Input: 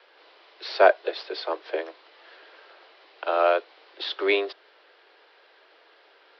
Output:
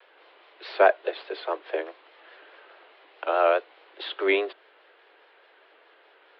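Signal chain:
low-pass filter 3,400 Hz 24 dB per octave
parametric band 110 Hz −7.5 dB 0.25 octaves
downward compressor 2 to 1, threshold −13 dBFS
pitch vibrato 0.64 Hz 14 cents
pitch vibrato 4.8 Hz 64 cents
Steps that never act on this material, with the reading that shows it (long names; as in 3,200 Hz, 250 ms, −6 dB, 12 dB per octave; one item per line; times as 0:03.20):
parametric band 110 Hz: nothing at its input below 290 Hz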